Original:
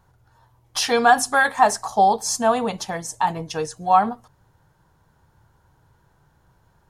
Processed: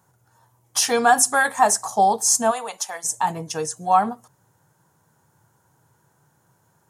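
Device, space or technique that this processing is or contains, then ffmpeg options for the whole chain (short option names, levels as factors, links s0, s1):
budget condenser microphone: -filter_complex "[0:a]asplit=3[s0][s1][s2];[s0]afade=t=out:st=2.5:d=0.02[s3];[s1]highpass=740,afade=t=in:st=2.5:d=0.02,afade=t=out:st=3.03:d=0.02[s4];[s2]afade=t=in:st=3.03:d=0.02[s5];[s3][s4][s5]amix=inputs=3:normalize=0,highpass=f=110:w=0.5412,highpass=f=110:w=1.3066,highshelf=f=5500:t=q:w=1.5:g=8,volume=0.891"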